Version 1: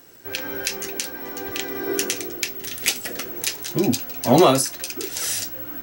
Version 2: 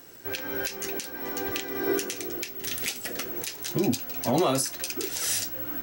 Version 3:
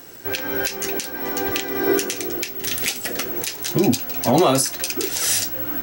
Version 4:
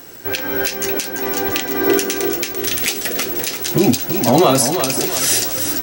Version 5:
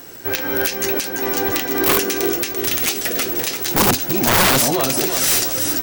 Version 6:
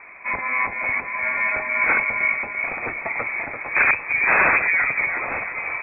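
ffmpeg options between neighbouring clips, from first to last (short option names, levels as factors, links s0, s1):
-af "alimiter=limit=0.178:level=0:latency=1:release=278"
-af "equalizer=f=780:t=o:w=0.24:g=2,volume=2.37"
-af "aecho=1:1:340|680|1020|1360|1700:0.398|0.187|0.0879|0.0413|0.0194,volume=1.5"
-af "aeval=exprs='(mod(2.82*val(0)+1,2)-1)/2.82':c=same"
-af "lowpass=f=2200:t=q:w=0.5098,lowpass=f=2200:t=q:w=0.6013,lowpass=f=2200:t=q:w=0.9,lowpass=f=2200:t=q:w=2.563,afreqshift=-2600"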